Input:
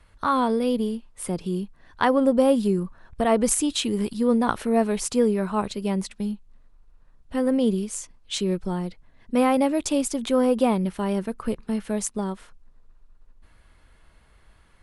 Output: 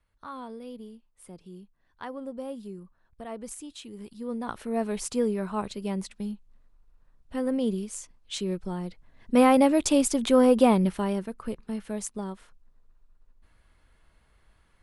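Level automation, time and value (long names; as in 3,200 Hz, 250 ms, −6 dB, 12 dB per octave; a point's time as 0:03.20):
0:03.90 −18 dB
0:04.94 −5.5 dB
0:08.77 −5.5 dB
0:09.38 +1.5 dB
0:10.87 +1.5 dB
0:11.30 −6.5 dB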